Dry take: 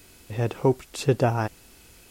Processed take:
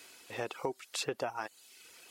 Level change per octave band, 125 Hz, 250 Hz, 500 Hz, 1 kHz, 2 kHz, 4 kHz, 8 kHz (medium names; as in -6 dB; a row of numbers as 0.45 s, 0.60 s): -26.5 dB, -18.0 dB, -13.0 dB, -10.0 dB, -5.5 dB, -2.0 dB, -3.0 dB